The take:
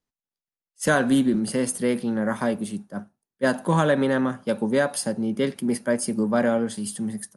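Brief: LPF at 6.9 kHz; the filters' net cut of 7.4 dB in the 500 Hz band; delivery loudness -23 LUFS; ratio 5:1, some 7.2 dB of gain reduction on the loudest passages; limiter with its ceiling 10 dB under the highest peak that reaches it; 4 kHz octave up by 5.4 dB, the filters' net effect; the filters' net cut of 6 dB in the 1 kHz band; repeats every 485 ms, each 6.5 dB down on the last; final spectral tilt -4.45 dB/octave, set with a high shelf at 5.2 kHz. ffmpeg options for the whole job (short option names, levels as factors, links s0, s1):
-af "lowpass=6900,equalizer=f=500:t=o:g=-7.5,equalizer=f=1000:t=o:g=-6,equalizer=f=4000:t=o:g=6,highshelf=f=5200:g=4.5,acompressor=threshold=0.0562:ratio=5,alimiter=level_in=1.19:limit=0.0631:level=0:latency=1,volume=0.841,aecho=1:1:485|970|1455|1940|2425|2910:0.473|0.222|0.105|0.0491|0.0231|0.0109,volume=3.16"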